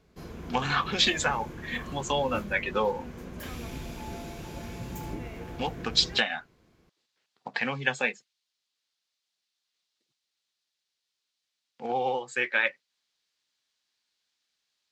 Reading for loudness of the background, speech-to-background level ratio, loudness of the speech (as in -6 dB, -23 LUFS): -40.5 LUFS, 12.5 dB, -28.0 LUFS